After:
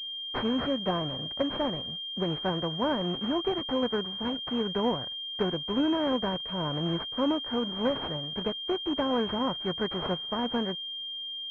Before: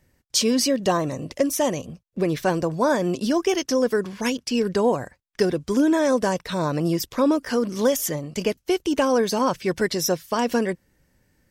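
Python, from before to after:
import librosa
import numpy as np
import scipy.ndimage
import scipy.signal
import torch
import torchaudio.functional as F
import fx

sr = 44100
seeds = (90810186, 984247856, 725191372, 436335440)

y = fx.envelope_flatten(x, sr, power=0.6)
y = fx.pwm(y, sr, carrier_hz=3200.0)
y = F.gain(torch.from_numpy(y), -7.5).numpy()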